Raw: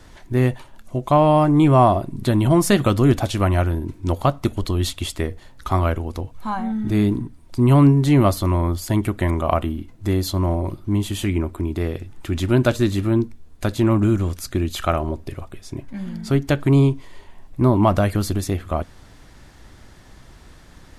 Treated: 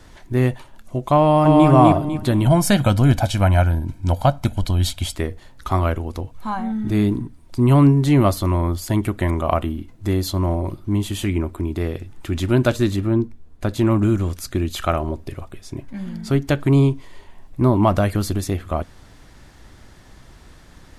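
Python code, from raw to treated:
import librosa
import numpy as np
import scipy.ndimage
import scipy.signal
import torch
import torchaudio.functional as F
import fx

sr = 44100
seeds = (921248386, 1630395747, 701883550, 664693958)

y = fx.echo_throw(x, sr, start_s=1.2, length_s=0.47, ms=250, feedback_pct=35, wet_db=-1.0)
y = fx.comb(y, sr, ms=1.3, depth=0.65, at=(2.46, 5.15))
y = fx.high_shelf(y, sr, hz=2300.0, db=-8.0, at=(12.96, 13.74))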